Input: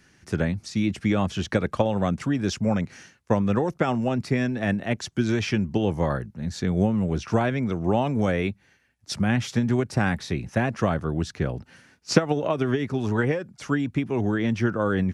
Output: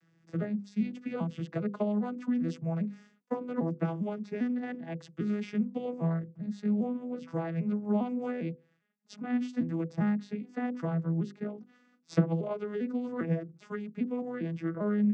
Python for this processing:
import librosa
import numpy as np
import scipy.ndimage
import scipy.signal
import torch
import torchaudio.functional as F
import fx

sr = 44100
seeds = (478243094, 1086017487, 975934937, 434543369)

y = fx.vocoder_arp(x, sr, chord='major triad', root=52, every_ms=400)
y = fx.hum_notches(y, sr, base_hz=50, count=10)
y = F.gain(torch.from_numpy(y), -5.5).numpy()